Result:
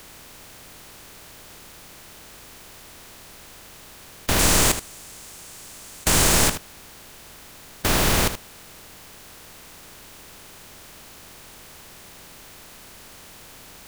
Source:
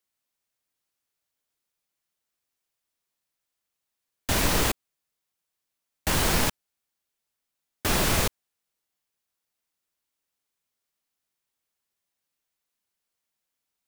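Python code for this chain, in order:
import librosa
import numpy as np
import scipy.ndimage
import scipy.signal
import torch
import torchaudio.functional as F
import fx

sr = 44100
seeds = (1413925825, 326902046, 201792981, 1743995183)

y = fx.bin_compress(x, sr, power=0.4)
y = fx.peak_eq(y, sr, hz=7900.0, db=8.0, octaves=1.1, at=(4.39, 6.48))
y = y + 10.0 ** (-11.0 / 20.0) * np.pad(y, (int(77 * sr / 1000.0), 0))[:len(y)]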